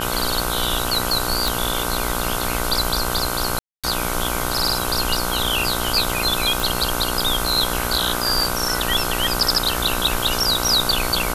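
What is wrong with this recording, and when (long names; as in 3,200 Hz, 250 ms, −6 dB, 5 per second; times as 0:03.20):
mains buzz 60 Hz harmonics 26 −26 dBFS
0:01.48: click
0:03.59–0:03.84: drop-out 246 ms
0:06.60: click
0:08.37: drop-out 2.7 ms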